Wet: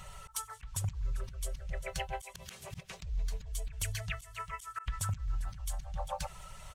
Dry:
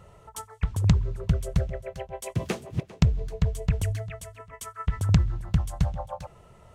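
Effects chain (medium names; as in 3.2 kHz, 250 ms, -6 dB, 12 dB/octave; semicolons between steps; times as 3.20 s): coarse spectral quantiser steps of 15 dB; amplifier tone stack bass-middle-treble 10-0-10; comb 5.3 ms, depth 47%; compression 3:1, threshold -45 dBFS, peak gain reduction 14.5 dB; slow attack 166 ms; trim +13 dB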